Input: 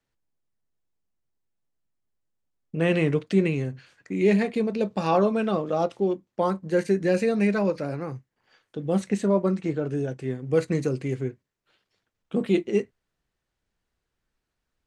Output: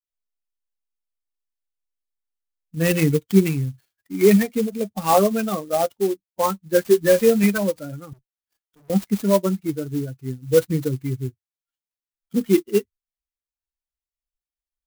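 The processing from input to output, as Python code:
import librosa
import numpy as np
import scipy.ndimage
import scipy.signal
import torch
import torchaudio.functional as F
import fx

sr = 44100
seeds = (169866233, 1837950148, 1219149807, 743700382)

y = fx.bin_expand(x, sr, power=2.0)
y = fx.doubler(y, sr, ms=13.0, db=-5, at=(6.89, 7.44))
y = fx.tube_stage(y, sr, drive_db=62.0, bias=0.4, at=(8.13, 8.9))
y = fx.clock_jitter(y, sr, seeds[0], jitter_ms=0.051)
y = y * 10.0 ** (8.5 / 20.0)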